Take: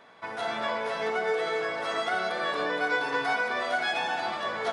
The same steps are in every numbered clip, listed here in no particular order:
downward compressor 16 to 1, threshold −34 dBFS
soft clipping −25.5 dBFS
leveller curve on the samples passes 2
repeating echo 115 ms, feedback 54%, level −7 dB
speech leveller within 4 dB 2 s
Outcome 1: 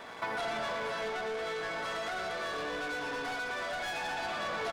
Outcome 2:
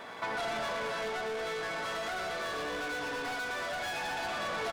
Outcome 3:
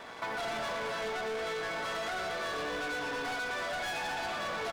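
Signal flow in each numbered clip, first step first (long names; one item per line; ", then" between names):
soft clipping, then repeating echo, then leveller curve on the samples, then downward compressor, then speech leveller
repeating echo, then soft clipping, then leveller curve on the samples, then downward compressor, then speech leveller
speech leveller, then leveller curve on the samples, then repeating echo, then soft clipping, then downward compressor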